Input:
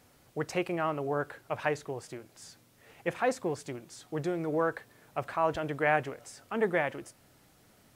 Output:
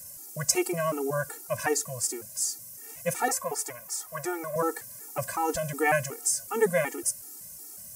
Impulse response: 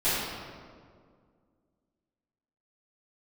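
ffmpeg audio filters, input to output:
-filter_complex "[0:a]asettb=1/sr,asplit=3[link_01][link_02][link_03];[link_01]atrim=end=3.284[link_04];[link_02]atrim=start=3.28:end=4.56,asetpts=PTS-STARTPTS,afade=type=in:duration=0.004:curve=qsin,afade=type=out:start_time=1.276:duration=0.004:curve=qsin,equalizer=frequency=125:width_type=o:width=1:gain=-10,equalizer=frequency=250:width_type=o:width=1:gain=-12,equalizer=frequency=1000:width_type=o:width=1:gain=10,equalizer=frequency=2000:width_type=o:width=1:gain=4,equalizer=frequency=4000:width_type=o:width=1:gain=-5,equalizer=frequency=8000:width_type=o:width=1:gain=-6[link_05];[link_03]atrim=start=4.556[link_06];[link_04][link_05]acrossfade=duration=0.004:curve1=hsin:curve2=qsin[link_07];[link_07][link_06]acrossfade=duration=0.004:curve1=qsin:curve2=hsin,aexciter=amount=11.3:drive=5.5:freq=5300,afftfilt=real='re*gt(sin(2*PI*2.7*pts/sr)*(1-2*mod(floor(b*sr/1024/240),2)),0)':imag='im*gt(sin(2*PI*2.7*pts/sr)*(1-2*mod(floor(b*sr/1024/240),2)),0)':win_size=1024:overlap=0.75,volume=5.5dB"

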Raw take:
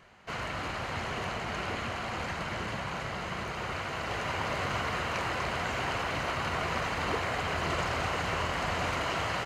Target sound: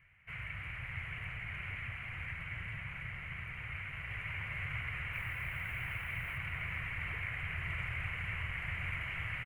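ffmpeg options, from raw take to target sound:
ffmpeg -i in.wav -filter_complex "[0:a]asettb=1/sr,asplit=3[link_01][link_02][link_03];[link_01]atrim=end=5.134[link_04];[link_02]atrim=start=5.13:end=6.38,asetpts=PTS-STARTPTS,afade=type=in:duration=0.004:curve=qsin,afade=type=out:start_time=1.246:duration=0.004:curve=qsin,acrusher=bits=6:mix=0:aa=0.5[link_05];[link_03]atrim=start=6.376[link_06];[link_04][link_05]acrossfade=duration=0.004:curve1=hsin:curve2=qsin[link_07];[link_07][link_06]acrossfade=duration=0.004:curve1=qsin:curve2=hsin,firequalizer=gain_entry='entry(130,0);entry(210,-19);entry(370,-22);entry(860,-20);entry(2200,4);entry(4100,-29);entry(6000,-29);entry(10000,-9)':delay=0.05:min_phase=1,asplit=6[link_08][link_09][link_10][link_11][link_12][link_13];[link_09]adelay=441,afreqshift=-90,volume=-11.5dB[link_14];[link_10]adelay=882,afreqshift=-180,volume=-18.1dB[link_15];[link_11]adelay=1323,afreqshift=-270,volume=-24.6dB[link_16];[link_12]adelay=1764,afreqshift=-360,volume=-31.2dB[link_17];[link_13]adelay=2205,afreqshift=-450,volume=-37.7dB[link_18];[link_08][link_14][link_15][link_16][link_17][link_18]amix=inputs=6:normalize=0,volume=-3dB" out.wav

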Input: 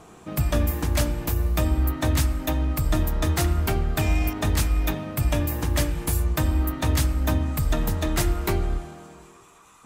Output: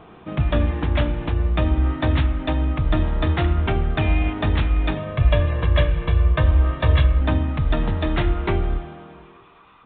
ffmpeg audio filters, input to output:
ffmpeg -i in.wav -filter_complex "[0:a]aresample=8000,aresample=44100,asettb=1/sr,asplit=3[link_01][link_02][link_03];[link_01]atrim=end=4.974[link_04];[link_02]atrim=start=4.97:end=7.21,asetpts=PTS-STARTPTS,afade=type=in:duration=0.004:curve=qsin,afade=type=out:start_time=2.236:duration=0.004:curve=qsin,aecho=1:1:1.8:0.67,atrim=end_sample=98784[link_05];[link_03]atrim=start=7.206[link_06];[link_04][link_05]acrossfade=duration=0.004:curve1=hsin:curve2=qsin[link_07];[link_07][link_06]acrossfade=duration=0.004:curve1=qsin:curve2=hsin,volume=3dB" out.wav

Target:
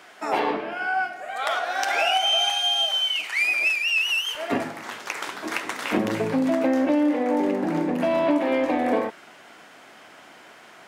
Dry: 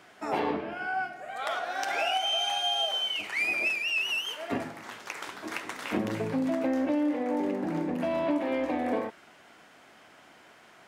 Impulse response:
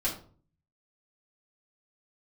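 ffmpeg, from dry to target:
-af "asetnsamples=nb_out_samples=441:pad=0,asendcmd='2.5 highpass f 1500;4.35 highpass f 170',highpass=frequency=470:poles=1,volume=7.5dB"

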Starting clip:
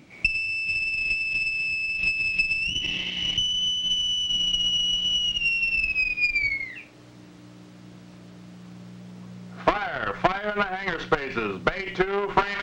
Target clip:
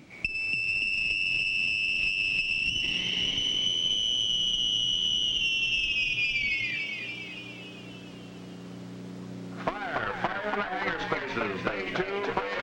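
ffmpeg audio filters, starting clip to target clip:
ffmpeg -i in.wav -filter_complex "[0:a]acompressor=threshold=-27dB:ratio=6,asplit=2[link_01][link_02];[link_02]asplit=8[link_03][link_04][link_05][link_06][link_07][link_08][link_09][link_10];[link_03]adelay=286,afreqshift=93,volume=-4dB[link_11];[link_04]adelay=572,afreqshift=186,volume=-8.7dB[link_12];[link_05]adelay=858,afreqshift=279,volume=-13.5dB[link_13];[link_06]adelay=1144,afreqshift=372,volume=-18.2dB[link_14];[link_07]adelay=1430,afreqshift=465,volume=-22.9dB[link_15];[link_08]adelay=1716,afreqshift=558,volume=-27.7dB[link_16];[link_09]adelay=2002,afreqshift=651,volume=-32.4dB[link_17];[link_10]adelay=2288,afreqshift=744,volume=-37.1dB[link_18];[link_11][link_12][link_13][link_14][link_15][link_16][link_17][link_18]amix=inputs=8:normalize=0[link_19];[link_01][link_19]amix=inputs=2:normalize=0" out.wav

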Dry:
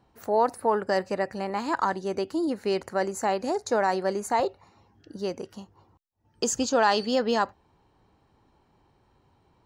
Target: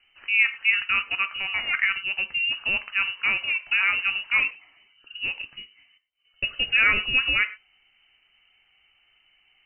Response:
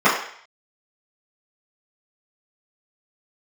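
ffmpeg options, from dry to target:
-filter_complex "[0:a]lowpass=frequency=2600:width_type=q:width=0.5098,lowpass=frequency=2600:width_type=q:width=0.6013,lowpass=frequency=2600:width_type=q:width=0.9,lowpass=frequency=2600:width_type=q:width=2.563,afreqshift=-3100,aemphasis=mode=reproduction:type=bsi,asplit=2[link_01][link_02];[1:a]atrim=start_sample=2205,atrim=end_sample=6174,highshelf=frequency=2700:gain=9.5[link_03];[link_02][link_03]afir=irnorm=-1:irlink=0,volume=-35dB[link_04];[link_01][link_04]amix=inputs=2:normalize=0,volume=3.5dB"

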